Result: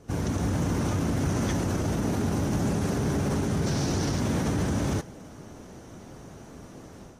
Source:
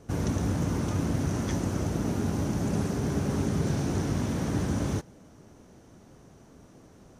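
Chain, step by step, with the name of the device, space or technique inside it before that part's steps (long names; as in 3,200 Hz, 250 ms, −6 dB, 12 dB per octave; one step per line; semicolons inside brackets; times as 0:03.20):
0:03.66–0:04.20: parametric band 4,900 Hz +8.5 dB 0.84 octaves
low-bitrate web radio (automatic gain control gain up to 8 dB; brickwall limiter −19 dBFS, peak gain reduction 11 dB; AAC 48 kbit/s 48,000 Hz)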